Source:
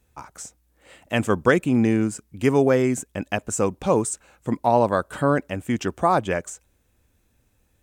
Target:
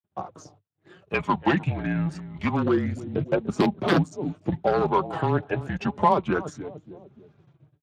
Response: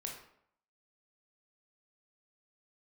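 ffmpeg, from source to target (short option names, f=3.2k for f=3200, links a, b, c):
-filter_complex "[0:a]asplit=2[a][b];[b]adelay=294,lowpass=f=1.2k:p=1,volume=-18dB,asplit=2[c][d];[d]adelay=294,lowpass=f=1.2k:p=1,volume=0.32,asplit=2[e][f];[f]adelay=294,lowpass=f=1.2k:p=1,volume=0.32[g];[a][c][e][g]amix=inputs=4:normalize=0,aeval=exprs='0.282*(abs(mod(val(0)/0.282+3,4)-2)-1)':c=same,aphaser=in_gain=1:out_gain=1:delay=1.1:decay=0.56:speed=0.27:type=sinusoidal,dynaudnorm=f=340:g=11:m=11dB,aeval=exprs='(mod(1.33*val(0)+1,2)-1)/1.33':c=same,afreqshift=-160,asetnsamples=n=441:p=0,asendcmd='1.14 equalizer g -3;2.71 equalizer g -9',equalizer=f=2.1k:w=0.98:g=-14,acompressor=threshold=-20dB:ratio=4,highpass=110,lowpass=3.1k,agate=range=-46dB:threshold=-58dB:ratio=16:detection=peak,flanger=delay=4.8:depth=2.1:regen=28:speed=0.83:shape=sinusoidal,volume=7.5dB" -ar 32000 -c:a libspeex -b:a 24k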